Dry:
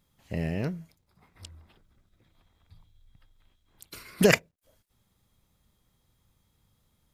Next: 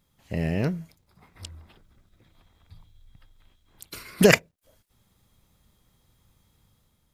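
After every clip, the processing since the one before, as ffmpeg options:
-af "dynaudnorm=f=130:g=7:m=4dB,volume=1.5dB"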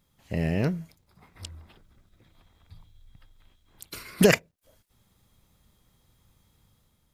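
-af "alimiter=limit=-6.5dB:level=0:latency=1:release=274"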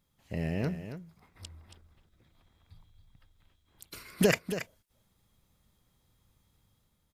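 -af "aecho=1:1:277:0.299,volume=-6dB"

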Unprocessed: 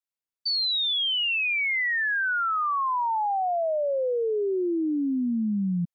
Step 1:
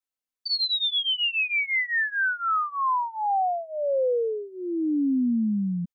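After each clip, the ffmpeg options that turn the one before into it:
-af "aecho=1:1:3.9:0.87,volume=-2.5dB"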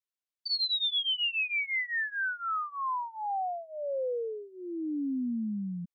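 -af "equalizer=f=3.7k:t=o:w=1.8:g=4.5,volume=-8.5dB"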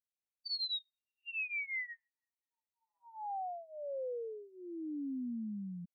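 -af "afftfilt=real='re*eq(mod(floor(b*sr/1024/930),2),0)':imag='im*eq(mod(floor(b*sr/1024/930),2),0)':win_size=1024:overlap=0.75,volume=-7.5dB"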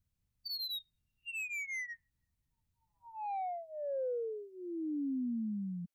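-filter_complex "[0:a]acrossover=split=140|590[a][b][c];[a]acompressor=mode=upward:threshold=-59dB:ratio=2.5[d];[c]asoftclip=type=tanh:threshold=-40dB[e];[d][b][e]amix=inputs=3:normalize=0,volume=3.5dB"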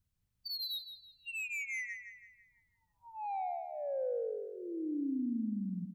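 -filter_complex "[0:a]asplit=2[a][b];[b]adelay=165,lowpass=f=4.3k:p=1,volume=-7.5dB,asplit=2[c][d];[d]adelay=165,lowpass=f=4.3k:p=1,volume=0.49,asplit=2[e][f];[f]adelay=165,lowpass=f=4.3k:p=1,volume=0.49,asplit=2[g][h];[h]adelay=165,lowpass=f=4.3k:p=1,volume=0.49,asplit=2[i][j];[j]adelay=165,lowpass=f=4.3k:p=1,volume=0.49,asplit=2[k][l];[l]adelay=165,lowpass=f=4.3k:p=1,volume=0.49[m];[a][c][e][g][i][k][m]amix=inputs=7:normalize=0"

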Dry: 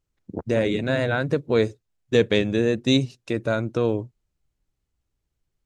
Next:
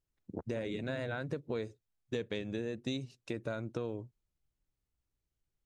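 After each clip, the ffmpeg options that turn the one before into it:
-af "acompressor=threshold=-25dB:ratio=6,volume=-8.5dB"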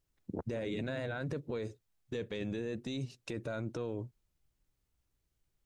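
-af "alimiter=level_in=10.5dB:limit=-24dB:level=0:latency=1:release=11,volume=-10.5dB,volume=5.5dB"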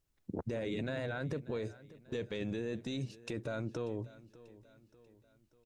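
-af "aecho=1:1:589|1178|1767|2356:0.112|0.0539|0.0259|0.0124"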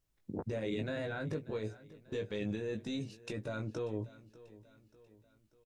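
-filter_complex "[0:a]asplit=2[a][b];[b]adelay=19,volume=-5dB[c];[a][c]amix=inputs=2:normalize=0,volume=-1.5dB"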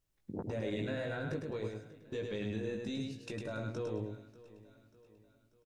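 -af "aecho=1:1:105|210|315:0.631|0.145|0.0334,volume=-1.5dB"

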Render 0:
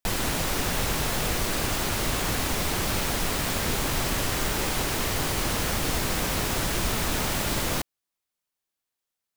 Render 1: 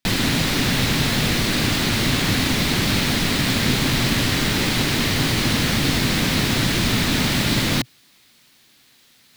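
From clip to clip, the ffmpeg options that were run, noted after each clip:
-af "equalizer=f=125:t=o:w=1:g=10,equalizer=f=250:t=o:w=1:g=11,equalizer=f=2k:t=o:w=1:g=7,equalizer=f=4k:t=o:w=1:g=10,areverse,acompressor=mode=upward:threshold=-33dB:ratio=2.5,areverse"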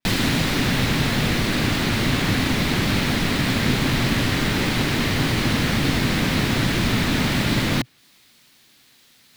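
-af "adynamicequalizer=threshold=0.0126:dfrequency=3100:dqfactor=0.7:tfrequency=3100:tqfactor=0.7:attack=5:release=100:ratio=0.375:range=3:mode=cutabove:tftype=highshelf"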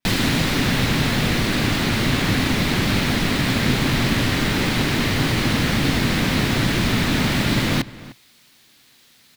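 -filter_complex "[0:a]asplit=2[a][b];[b]adelay=303.2,volume=-18dB,highshelf=f=4k:g=-6.82[c];[a][c]amix=inputs=2:normalize=0,volume=1dB"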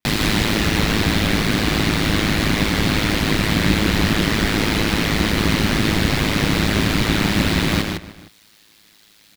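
-af "aecho=1:1:110.8|157.4:0.282|0.562,aeval=exprs='val(0)*sin(2*PI*53*n/s)':c=same,volume=3dB"

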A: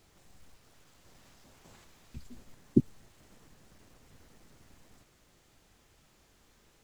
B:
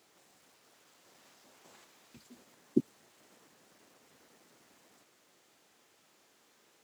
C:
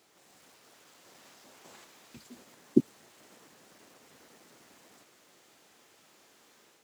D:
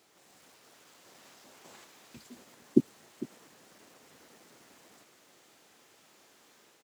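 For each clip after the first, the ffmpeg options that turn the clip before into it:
-af "highpass=290"
-af "dynaudnorm=f=100:g=5:m=4.5dB,volume=1dB"
-af "aecho=1:1:452:0.15"

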